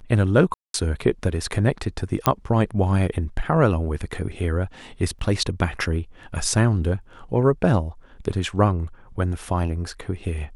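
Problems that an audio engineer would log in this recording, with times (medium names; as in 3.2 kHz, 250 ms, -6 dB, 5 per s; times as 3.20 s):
0.54–0.74 s: dropout 202 ms
2.26 s: pop -2 dBFS
5.19 s: dropout 2.7 ms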